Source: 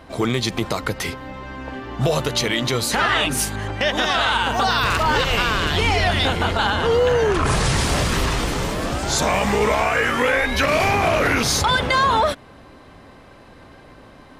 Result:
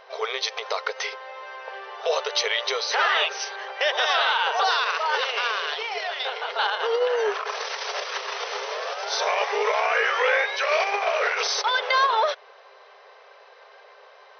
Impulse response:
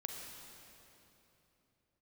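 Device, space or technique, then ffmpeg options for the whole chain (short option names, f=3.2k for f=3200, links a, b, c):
car stereo with a boomy subwoofer: -af "lowshelf=f=140:t=q:w=3:g=13.5,alimiter=limit=-6.5dB:level=0:latency=1:release=39,afftfilt=real='re*between(b*sr/4096,390,6200)':imag='im*between(b*sr/4096,390,6200)':win_size=4096:overlap=0.75,volume=-1.5dB"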